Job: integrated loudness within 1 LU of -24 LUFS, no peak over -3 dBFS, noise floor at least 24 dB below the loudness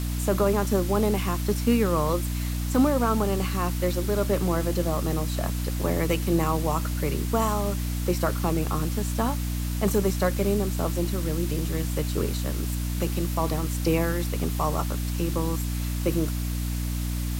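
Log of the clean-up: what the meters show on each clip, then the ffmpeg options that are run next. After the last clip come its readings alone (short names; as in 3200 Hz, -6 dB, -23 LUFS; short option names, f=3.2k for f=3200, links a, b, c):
hum 60 Hz; harmonics up to 300 Hz; hum level -26 dBFS; noise floor -28 dBFS; noise floor target -50 dBFS; loudness -26.0 LUFS; peak -11.0 dBFS; loudness target -24.0 LUFS
-> -af "bandreject=f=60:t=h:w=4,bandreject=f=120:t=h:w=4,bandreject=f=180:t=h:w=4,bandreject=f=240:t=h:w=4,bandreject=f=300:t=h:w=4"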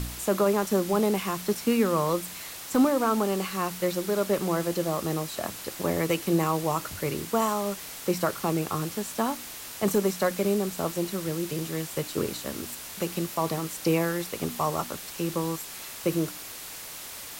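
hum none; noise floor -40 dBFS; noise floor target -52 dBFS
-> -af "afftdn=nr=12:nf=-40"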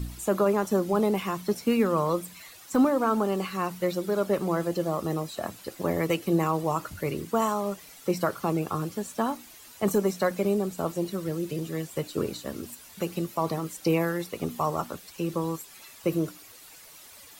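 noise floor -50 dBFS; noise floor target -53 dBFS
-> -af "afftdn=nr=6:nf=-50"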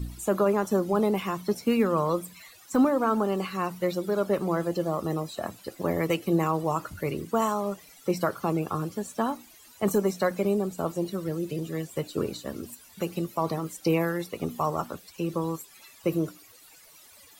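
noise floor -53 dBFS; loudness -28.5 LUFS; peak -13.0 dBFS; loudness target -24.0 LUFS
-> -af "volume=4.5dB"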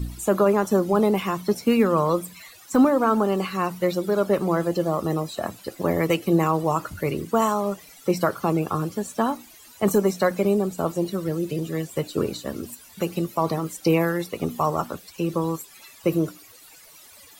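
loudness -24.0 LUFS; peak -8.5 dBFS; noise floor -49 dBFS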